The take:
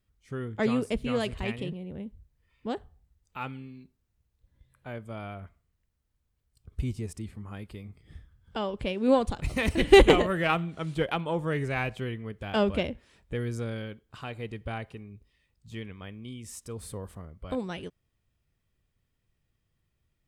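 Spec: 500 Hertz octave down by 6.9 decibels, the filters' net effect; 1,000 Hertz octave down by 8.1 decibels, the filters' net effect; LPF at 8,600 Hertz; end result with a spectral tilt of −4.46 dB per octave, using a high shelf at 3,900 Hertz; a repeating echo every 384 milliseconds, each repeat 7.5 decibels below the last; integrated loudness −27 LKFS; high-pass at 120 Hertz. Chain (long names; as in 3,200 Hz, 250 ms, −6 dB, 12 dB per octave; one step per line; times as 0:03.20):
high-pass filter 120 Hz
low-pass filter 8,600 Hz
parametric band 500 Hz −7.5 dB
parametric band 1,000 Hz −8 dB
high-shelf EQ 3,900 Hz −5 dB
repeating echo 384 ms, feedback 42%, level −7.5 dB
level +6 dB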